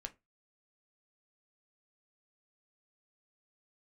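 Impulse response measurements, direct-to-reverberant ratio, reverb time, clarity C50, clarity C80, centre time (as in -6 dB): 6.0 dB, 0.20 s, 20.5 dB, 30.0 dB, 4 ms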